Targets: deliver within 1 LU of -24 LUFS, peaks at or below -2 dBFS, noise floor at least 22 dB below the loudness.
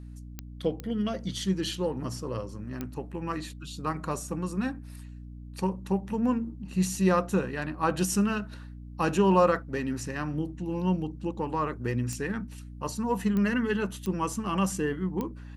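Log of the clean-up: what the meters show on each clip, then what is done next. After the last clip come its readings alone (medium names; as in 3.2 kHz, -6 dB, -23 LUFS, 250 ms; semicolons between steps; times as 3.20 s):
clicks found 7; hum 60 Hz; highest harmonic 300 Hz; hum level -41 dBFS; loudness -29.5 LUFS; peak level -9.0 dBFS; loudness target -24.0 LUFS
-> de-click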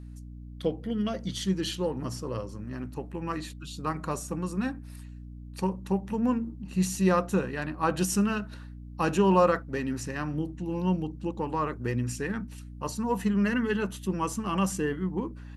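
clicks found 0; hum 60 Hz; highest harmonic 300 Hz; hum level -41 dBFS
-> hum notches 60/120/180/240/300 Hz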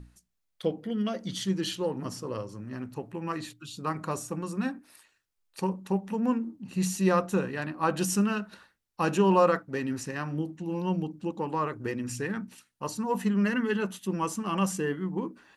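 hum not found; loudness -30.0 LUFS; peak level -10.5 dBFS; loudness target -24.0 LUFS
-> trim +6 dB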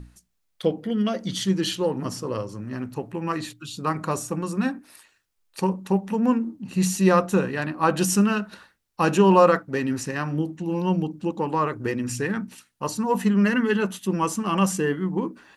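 loudness -24.0 LUFS; peak level -4.5 dBFS; noise floor -72 dBFS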